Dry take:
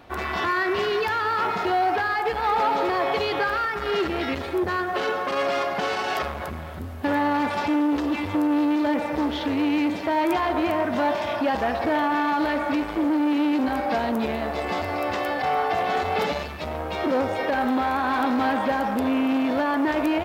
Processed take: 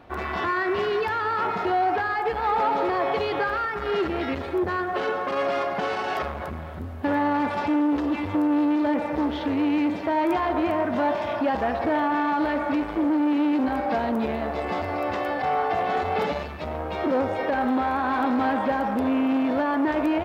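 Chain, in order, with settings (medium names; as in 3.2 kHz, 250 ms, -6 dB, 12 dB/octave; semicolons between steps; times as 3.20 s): treble shelf 3.1 kHz -10 dB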